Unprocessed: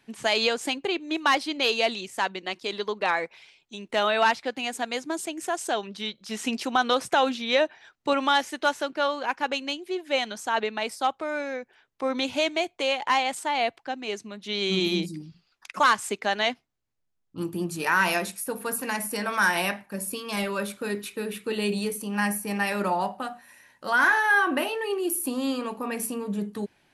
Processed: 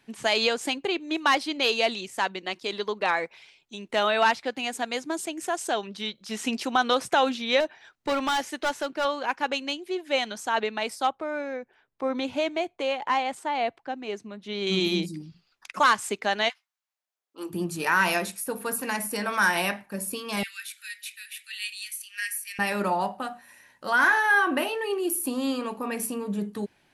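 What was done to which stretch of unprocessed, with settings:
0:07.60–0:09.05: gain into a clipping stage and back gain 21.5 dB
0:11.09–0:14.67: high-shelf EQ 2,400 Hz −10 dB
0:16.48–0:17.49: high-pass filter 1,200 Hz → 340 Hz 24 dB per octave
0:20.43–0:22.59: Butterworth high-pass 1,700 Hz 48 dB per octave

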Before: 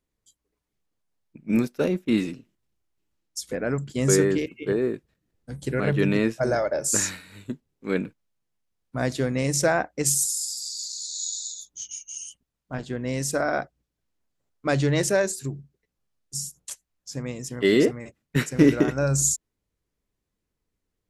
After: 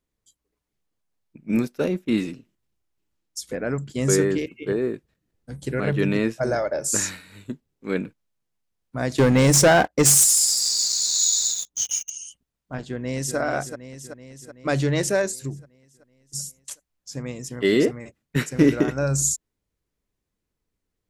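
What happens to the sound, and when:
0:09.18–0:12.10: leveller curve on the samples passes 3
0:12.78–0:13.37: delay throw 380 ms, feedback 65%, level −8.5 dB

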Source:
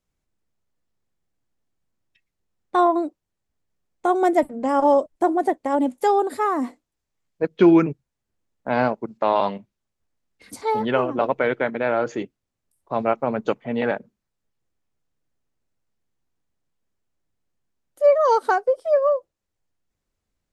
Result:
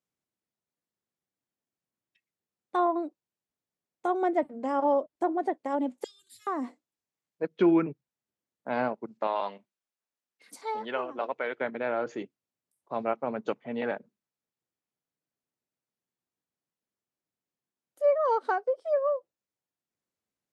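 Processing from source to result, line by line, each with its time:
0:06.04–0:06.47: Chebyshev band-stop filter 110–3,300 Hz, order 3
0:09.27–0:11.61: high-pass filter 590 Hz 6 dB per octave
whole clip: treble cut that deepens with the level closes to 2,900 Hz, closed at −14 dBFS; high-pass filter 160 Hz 12 dB per octave; level −8 dB

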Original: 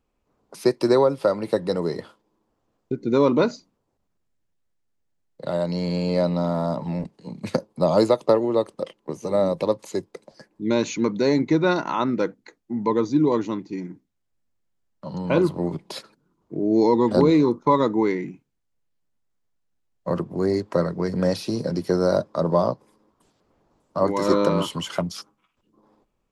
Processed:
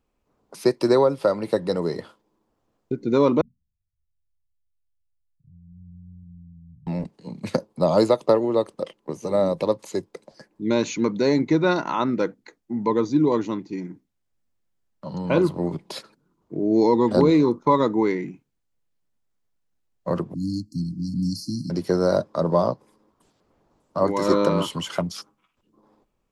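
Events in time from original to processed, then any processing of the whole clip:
0:03.41–0:06.87: inverse Chebyshev low-pass filter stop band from 580 Hz, stop band 80 dB
0:20.34–0:21.70: linear-phase brick-wall band-stop 320–4,100 Hz

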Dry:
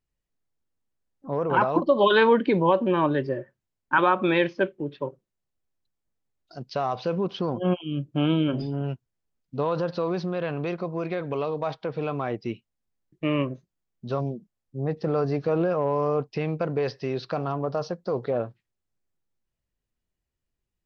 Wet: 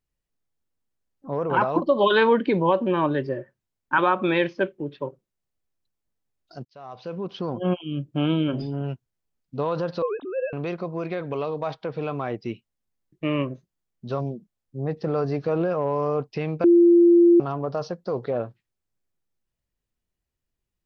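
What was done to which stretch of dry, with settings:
0:06.65–0:07.63: fade in
0:10.02–0:10.53: three sine waves on the formant tracks
0:16.64–0:17.40: beep over 344 Hz −11 dBFS

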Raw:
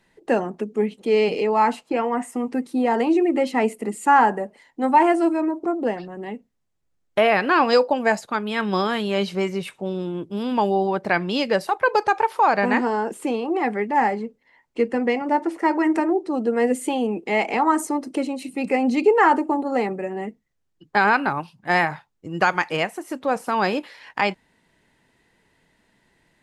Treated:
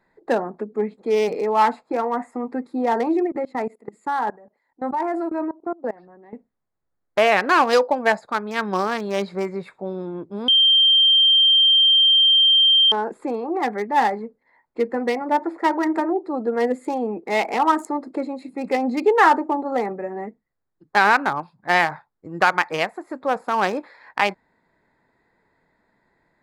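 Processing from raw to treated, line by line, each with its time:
0:03.27–0:06.33: output level in coarse steps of 23 dB
0:10.48–0:12.92: beep over 3,160 Hz −14.5 dBFS
whole clip: adaptive Wiener filter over 15 samples; low-shelf EQ 450 Hz −10 dB; level +4.5 dB

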